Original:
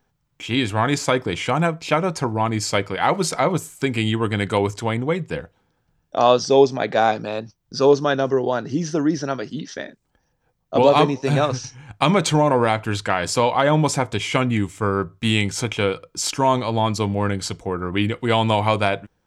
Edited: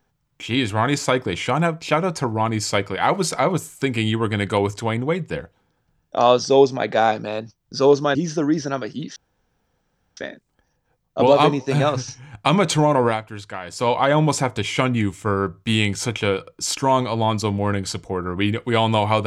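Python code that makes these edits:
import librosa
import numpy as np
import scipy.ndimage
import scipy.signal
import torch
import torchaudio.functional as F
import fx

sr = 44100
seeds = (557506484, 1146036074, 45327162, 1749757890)

y = fx.edit(x, sr, fx.cut(start_s=8.15, length_s=0.57),
    fx.insert_room_tone(at_s=9.73, length_s=1.01),
    fx.fade_down_up(start_s=12.63, length_s=0.83, db=-10.5, fade_s=0.15), tone=tone)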